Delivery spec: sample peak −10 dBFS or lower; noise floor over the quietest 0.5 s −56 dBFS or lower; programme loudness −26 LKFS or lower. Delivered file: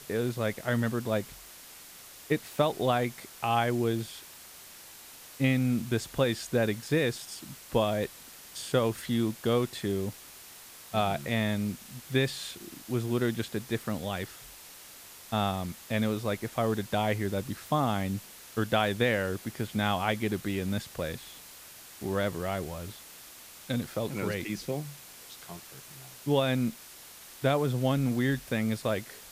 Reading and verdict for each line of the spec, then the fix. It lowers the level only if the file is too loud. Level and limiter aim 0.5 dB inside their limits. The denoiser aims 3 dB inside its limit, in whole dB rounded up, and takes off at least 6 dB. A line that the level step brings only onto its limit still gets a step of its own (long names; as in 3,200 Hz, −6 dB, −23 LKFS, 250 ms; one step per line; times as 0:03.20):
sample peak −11.5 dBFS: in spec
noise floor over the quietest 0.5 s −49 dBFS: out of spec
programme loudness −30.5 LKFS: in spec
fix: broadband denoise 10 dB, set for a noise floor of −49 dBFS